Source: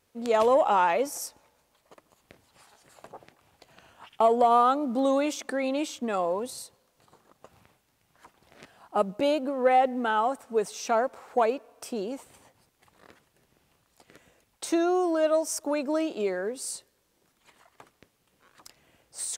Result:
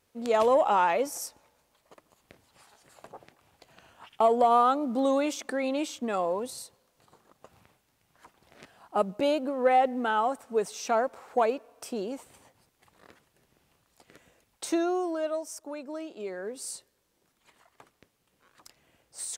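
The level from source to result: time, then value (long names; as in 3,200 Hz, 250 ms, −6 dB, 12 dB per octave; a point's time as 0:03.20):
0:14.67 −1 dB
0:15.62 −10.5 dB
0:16.13 −10.5 dB
0:16.59 −3 dB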